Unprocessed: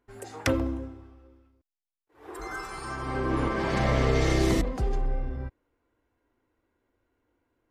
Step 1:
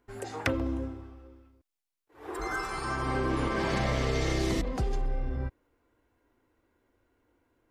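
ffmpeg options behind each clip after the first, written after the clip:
ffmpeg -i in.wav -filter_complex "[0:a]acrossover=split=2600|6500[link_01][link_02][link_03];[link_01]acompressor=threshold=-30dB:ratio=4[link_04];[link_02]acompressor=threshold=-44dB:ratio=4[link_05];[link_03]acompressor=threshold=-56dB:ratio=4[link_06];[link_04][link_05][link_06]amix=inputs=3:normalize=0,volume=3.5dB" out.wav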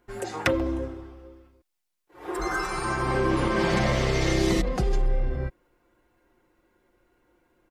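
ffmpeg -i in.wav -af "aecho=1:1:5.6:0.53,volume=4.5dB" out.wav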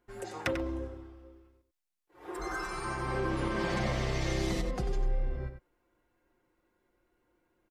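ffmpeg -i in.wav -filter_complex "[0:a]asplit=2[link_01][link_02];[link_02]adelay=93.29,volume=-9dB,highshelf=frequency=4000:gain=-2.1[link_03];[link_01][link_03]amix=inputs=2:normalize=0,volume=-8.5dB" out.wav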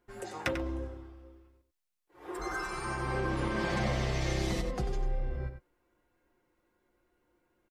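ffmpeg -i in.wav -filter_complex "[0:a]asplit=2[link_01][link_02];[link_02]adelay=14,volume=-12dB[link_03];[link_01][link_03]amix=inputs=2:normalize=0" out.wav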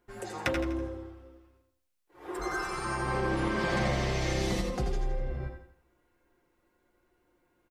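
ffmpeg -i in.wav -af "aecho=1:1:82|164|246|328|410:0.398|0.163|0.0669|0.0274|0.0112,volume=2dB" out.wav

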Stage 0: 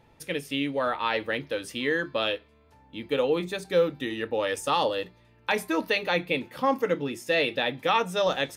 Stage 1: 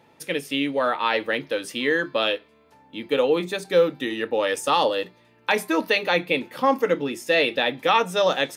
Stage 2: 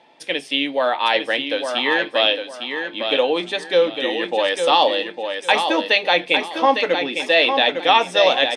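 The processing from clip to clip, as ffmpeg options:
ffmpeg -i in.wav -af "highpass=180,volume=4.5dB" out.wav
ffmpeg -i in.wav -filter_complex "[0:a]highpass=330,equalizer=frequency=440:width_type=q:width=4:gain=-6,equalizer=frequency=720:width_type=q:width=4:gain=5,equalizer=frequency=1300:width_type=q:width=4:gain=-7,equalizer=frequency=3300:width_type=q:width=4:gain=5,equalizer=frequency=6800:width_type=q:width=4:gain=-7,lowpass=frequency=8200:width=0.5412,lowpass=frequency=8200:width=1.3066,asplit=2[link_01][link_02];[link_02]aecho=0:1:855|1710|2565|3420:0.473|0.132|0.0371|0.0104[link_03];[link_01][link_03]amix=inputs=2:normalize=0,volume=4.5dB" out.wav

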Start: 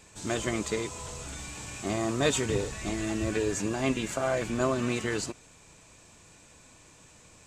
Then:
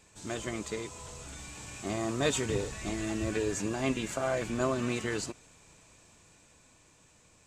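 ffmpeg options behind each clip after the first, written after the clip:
ffmpeg -i in.wav -af "dynaudnorm=framelen=300:gausssize=11:maxgain=3.5dB,volume=-6dB" out.wav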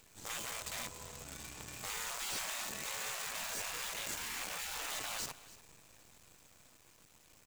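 ffmpeg -i in.wav -af "acrusher=bits=7:dc=4:mix=0:aa=0.000001,afftfilt=real='re*lt(hypot(re,im),0.0316)':imag='im*lt(hypot(re,im),0.0316)':win_size=1024:overlap=0.75,aecho=1:1:295:0.126" out.wav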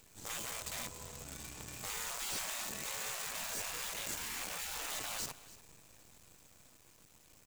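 ffmpeg -i in.wav -af "equalizer=frequency=1800:width=0.31:gain=-3.5,volume=2dB" out.wav

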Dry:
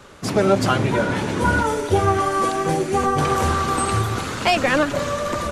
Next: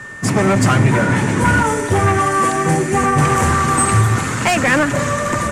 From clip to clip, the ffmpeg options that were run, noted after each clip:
ffmpeg -i in.wav -af "volume=15.5dB,asoftclip=hard,volume=-15.5dB,aeval=exprs='val(0)+0.0112*sin(2*PI*1800*n/s)':channel_layout=same,equalizer=frequency=125:width_type=o:width=1:gain=11,equalizer=frequency=250:width_type=o:width=1:gain=5,equalizer=frequency=1000:width_type=o:width=1:gain=4,equalizer=frequency=2000:width_type=o:width=1:gain=8,equalizer=frequency=4000:width_type=o:width=1:gain=-5,equalizer=frequency=8000:width_type=o:width=1:gain=12" out.wav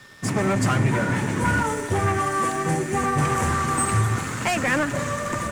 ffmpeg -i in.wav -af "aeval=exprs='sgn(val(0))*max(abs(val(0))-0.0188,0)':channel_layout=same,volume=-7dB" out.wav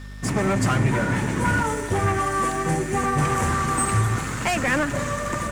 ffmpeg -i in.wav -af "aeval=exprs='val(0)+0.0158*(sin(2*PI*50*n/s)+sin(2*PI*2*50*n/s)/2+sin(2*PI*3*50*n/s)/3+sin(2*PI*4*50*n/s)/4+sin(2*PI*5*50*n/s)/5)':channel_layout=same" out.wav

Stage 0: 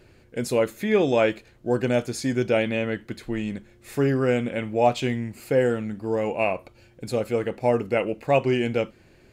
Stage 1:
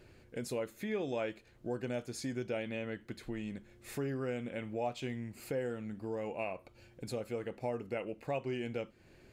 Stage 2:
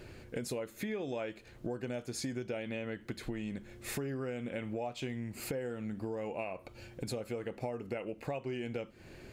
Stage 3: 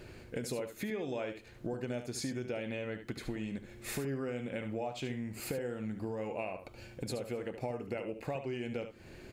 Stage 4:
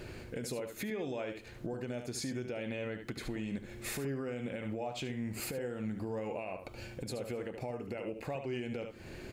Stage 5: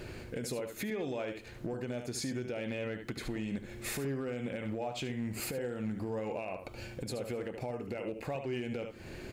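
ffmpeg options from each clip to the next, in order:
ffmpeg -i in.wav -af "acompressor=threshold=-37dB:ratio=2,volume=-5dB" out.wav
ffmpeg -i in.wav -af "acompressor=threshold=-44dB:ratio=5,volume=8.5dB" out.wav
ffmpeg -i in.wav -af "aecho=1:1:73:0.335" out.wav
ffmpeg -i in.wav -af "alimiter=level_in=9.5dB:limit=-24dB:level=0:latency=1:release=185,volume=-9.5dB,volume=4.5dB" out.wav
ffmpeg -i in.wav -af "asoftclip=type=hard:threshold=-30.5dB,volume=1.5dB" out.wav

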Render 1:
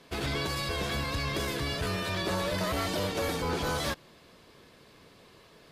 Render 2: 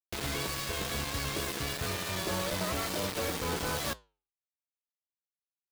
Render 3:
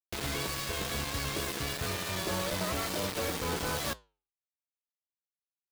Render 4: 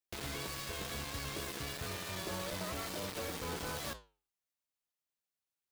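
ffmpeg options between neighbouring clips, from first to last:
ffmpeg -i in.wav -af "acrusher=bits=4:mix=0:aa=0.000001,flanger=delay=7.7:depth=8.8:regen=-82:speed=0.52:shape=triangular" out.wav
ffmpeg -i in.wav -af anull out.wav
ffmpeg -i in.wav -af "alimiter=level_in=12dB:limit=-24dB:level=0:latency=1:release=21,volume=-12dB,volume=2.5dB" out.wav

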